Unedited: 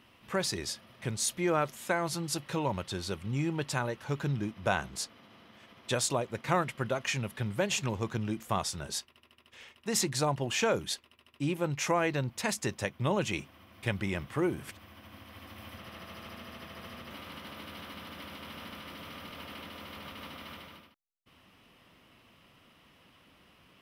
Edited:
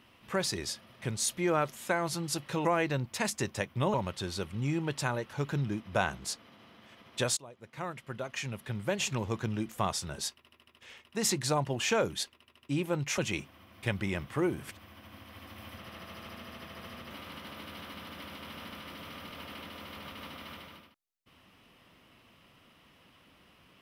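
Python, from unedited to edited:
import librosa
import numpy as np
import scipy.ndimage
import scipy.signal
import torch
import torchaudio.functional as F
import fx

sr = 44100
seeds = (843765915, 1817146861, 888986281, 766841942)

y = fx.edit(x, sr, fx.fade_in_from(start_s=6.08, length_s=1.88, floor_db=-22.5),
    fx.move(start_s=11.89, length_s=1.29, to_s=2.65), tone=tone)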